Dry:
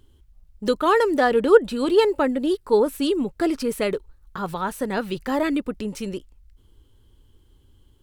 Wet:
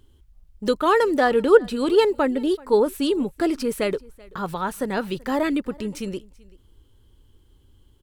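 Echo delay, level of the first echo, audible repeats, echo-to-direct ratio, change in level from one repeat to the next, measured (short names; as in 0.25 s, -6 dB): 0.383 s, -24.0 dB, 1, -24.0 dB, no steady repeat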